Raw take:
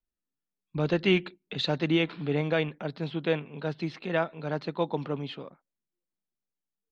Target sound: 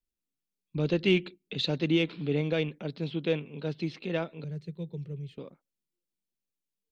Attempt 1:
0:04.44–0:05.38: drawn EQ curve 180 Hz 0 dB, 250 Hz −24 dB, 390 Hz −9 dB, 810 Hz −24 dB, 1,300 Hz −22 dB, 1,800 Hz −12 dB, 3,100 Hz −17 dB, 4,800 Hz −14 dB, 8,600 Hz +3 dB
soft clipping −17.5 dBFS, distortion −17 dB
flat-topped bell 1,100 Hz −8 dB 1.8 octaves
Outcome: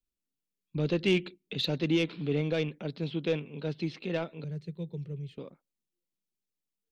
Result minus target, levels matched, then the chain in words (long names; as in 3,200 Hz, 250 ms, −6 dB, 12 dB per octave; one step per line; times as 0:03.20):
soft clipping: distortion +12 dB
0:04.44–0:05.38: drawn EQ curve 180 Hz 0 dB, 250 Hz −24 dB, 390 Hz −9 dB, 810 Hz −24 dB, 1,300 Hz −22 dB, 1,800 Hz −12 dB, 3,100 Hz −17 dB, 4,800 Hz −14 dB, 8,600 Hz +3 dB
soft clipping −10 dBFS, distortion −29 dB
flat-topped bell 1,100 Hz −8 dB 1.8 octaves